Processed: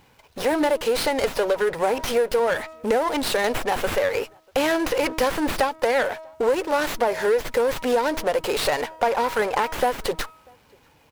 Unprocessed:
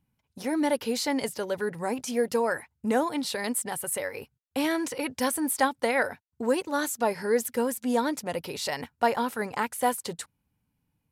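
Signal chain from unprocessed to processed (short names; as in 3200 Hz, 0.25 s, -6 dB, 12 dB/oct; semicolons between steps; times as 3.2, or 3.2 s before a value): resonant low shelf 310 Hz -13 dB, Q 1.5; de-hum 318.8 Hz, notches 4; compressor, threshold -30 dBFS, peak gain reduction 13 dB; power-law curve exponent 0.7; outdoor echo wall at 110 m, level -30 dB; running maximum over 5 samples; gain +8 dB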